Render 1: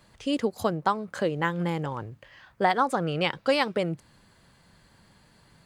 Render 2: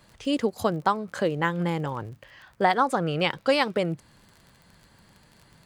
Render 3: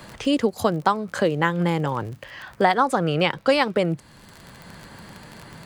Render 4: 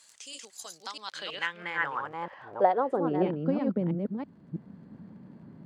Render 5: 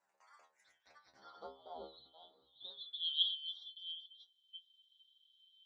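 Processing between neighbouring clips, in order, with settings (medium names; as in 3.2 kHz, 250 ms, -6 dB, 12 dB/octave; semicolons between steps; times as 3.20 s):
crackle 31 per s -41 dBFS; trim +1.5 dB
three bands compressed up and down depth 40%; trim +4 dB
chunks repeated in reverse 326 ms, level -3 dB; band-pass sweep 7.3 kHz -> 220 Hz, 0.62–3.46 s
four frequency bands reordered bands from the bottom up 2413; inharmonic resonator 65 Hz, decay 0.39 s, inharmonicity 0.002; band-pass sweep 810 Hz -> 6.9 kHz, 2.62–3.55 s; trim +1 dB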